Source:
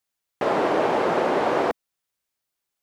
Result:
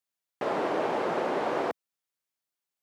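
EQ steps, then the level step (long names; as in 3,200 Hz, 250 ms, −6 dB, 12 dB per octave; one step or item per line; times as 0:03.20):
high-pass filter 100 Hz
−7.0 dB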